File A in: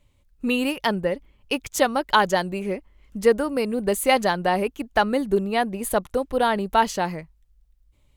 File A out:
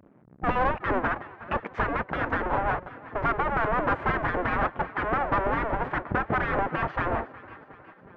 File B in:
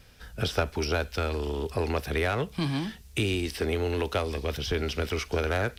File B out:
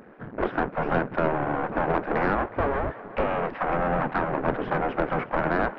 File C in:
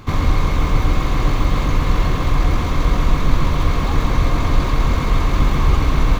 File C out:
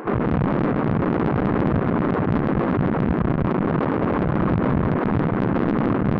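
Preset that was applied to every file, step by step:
square wave that keeps the level; in parallel at -1 dB: compression, threshold -23 dBFS; on the sum: low-pass 1.7 kHz 24 dB/octave; on a send: thinning echo 365 ms, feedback 57%, high-pass 290 Hz, level -18.5 dB; on the sum: peak limiter -9.5 dBFS; bass shelf 410 Hz +9 dB; spectral gate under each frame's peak -15 dB weak; saturation -12.5 dBFS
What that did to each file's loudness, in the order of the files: -4.5 LU, +3.0 LU, -2.0 LU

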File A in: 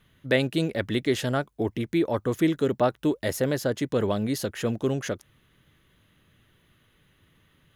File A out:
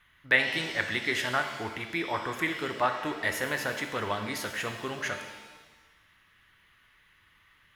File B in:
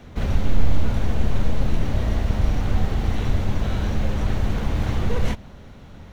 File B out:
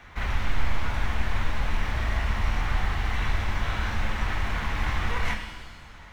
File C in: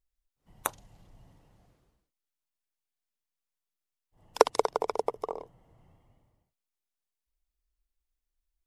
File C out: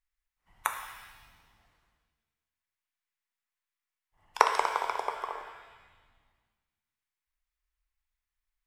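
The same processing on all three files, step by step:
graphic EQ 125/250/500/1000/2000 Hz -8/-7/-7/+7/+10 dB; pitch-shifted reverb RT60 1.2 s, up +7 st, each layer -8 dB, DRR 5 dB; trim -4.5 dB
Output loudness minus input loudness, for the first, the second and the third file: -3.0 LU, -4.5 LU, -0.5 LU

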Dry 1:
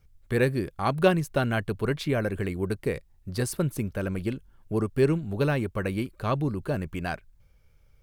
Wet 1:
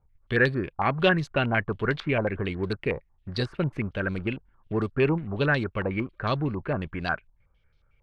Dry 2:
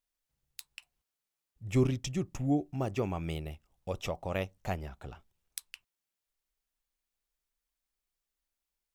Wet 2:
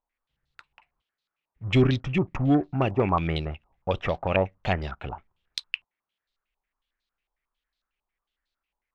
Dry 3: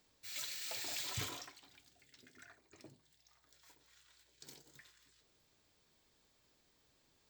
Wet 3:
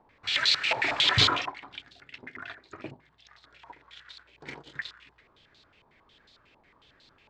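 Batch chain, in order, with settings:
waveshaping leveller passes 1; step-sequenced low-pass 11 Hz 910–4000 Hz; peak normalisation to -9 dBFS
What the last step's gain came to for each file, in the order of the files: -4.0 dB, +4.5 dB, +13.0 dB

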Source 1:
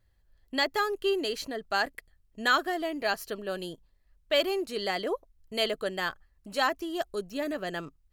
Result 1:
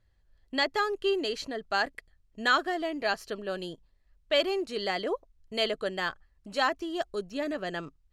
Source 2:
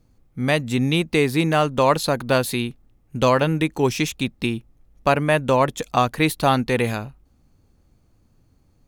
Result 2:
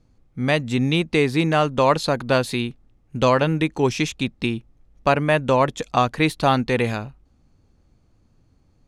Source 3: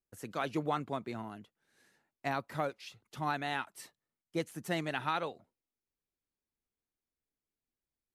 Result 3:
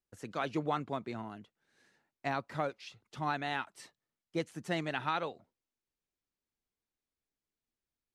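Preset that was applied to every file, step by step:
low-pass 7.3 kHz 12 dB/octave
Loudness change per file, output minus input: 0.0 LU, 0.0 LU, 0.0 LU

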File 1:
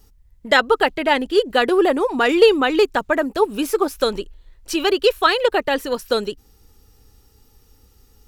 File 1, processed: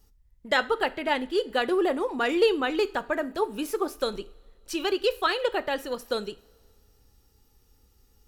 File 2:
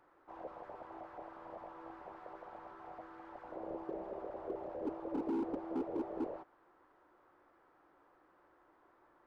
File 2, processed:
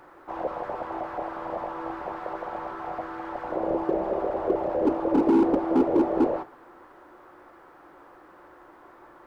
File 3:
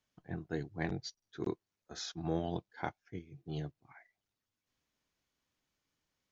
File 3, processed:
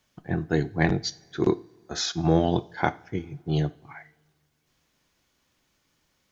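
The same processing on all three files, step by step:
two-slope reverb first 0.38 s, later 2.2 s, from -21 dB, DRR 13 dB; normalise loudness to -27 LUFS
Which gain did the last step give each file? -9.0 dB, +16.5 dB, +13.5 dB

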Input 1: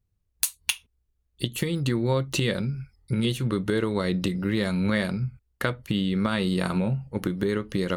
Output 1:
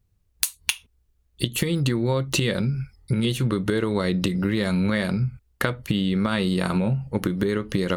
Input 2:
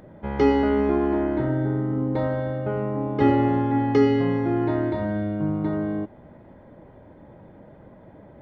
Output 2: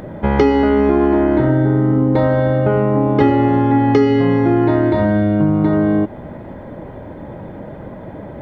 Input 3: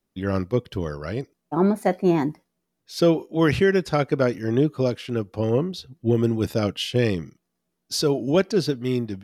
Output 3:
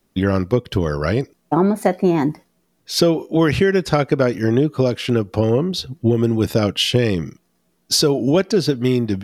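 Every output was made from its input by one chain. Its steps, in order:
compression 4:1, threshold -27 dBFS; peak normalisation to -1.5 dBFS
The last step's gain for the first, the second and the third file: +7.5 dB, +15.5 dB, +13.0 dB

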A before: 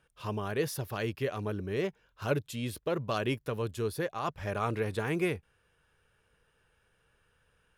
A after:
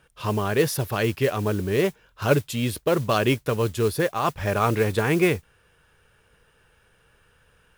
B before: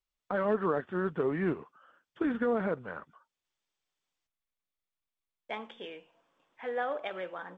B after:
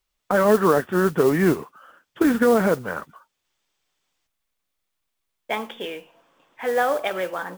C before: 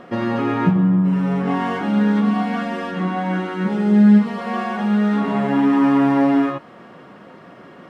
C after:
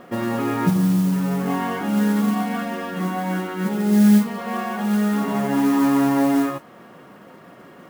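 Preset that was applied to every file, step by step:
modulation noise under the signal 21 dB; peak normalisation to -6 dBFS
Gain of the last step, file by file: +10.0 dB, +12.0 dB, -2.5 dB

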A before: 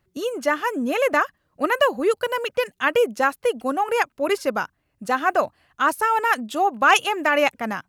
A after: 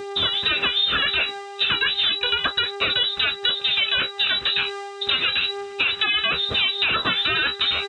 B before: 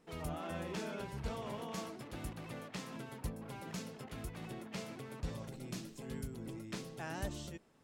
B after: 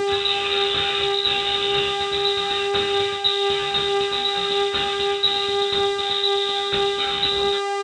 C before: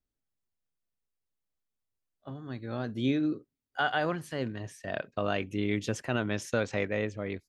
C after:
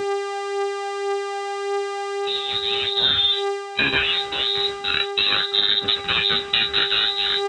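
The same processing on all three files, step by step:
comb filter that takes the minimum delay 0.81 ms; frequency inversion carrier 3.9 kHz; bass shelf 230 Hz +7.5 dB; mains buzz 400 Hz, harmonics 22, -44 dBFS -8 dB/octave; high-pass 46 Hz; doubling 29 ms -13 dB; peak limiter -17 dBFS; dynamic bell 1.6 kHz, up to +5 dB, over -48 dBFS, Q 2.8; reverse; upward compressor, threshold -31 dBFS; reverse; flange 0.35 Hz, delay 9.4 ms, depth 7.2 ms, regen +34%; compression, threshold -32 dBFS; normalise loudness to -20 LUFS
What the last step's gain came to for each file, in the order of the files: +13.5 dB, +20.0 dB, +17.0 dB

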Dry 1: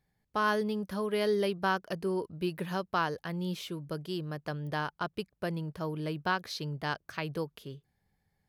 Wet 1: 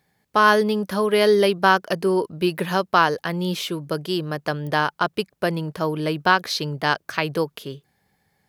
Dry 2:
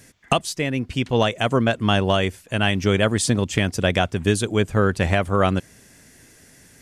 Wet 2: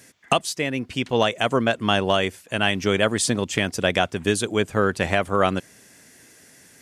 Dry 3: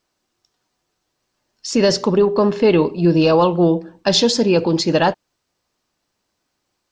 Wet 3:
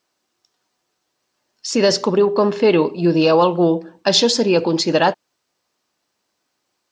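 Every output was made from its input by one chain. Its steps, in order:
high-pass 250 Hz 6 dB/octave; peak normalisation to -3 dBFS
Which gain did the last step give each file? +13.5 dB, +0.5 dB, +1.0 dB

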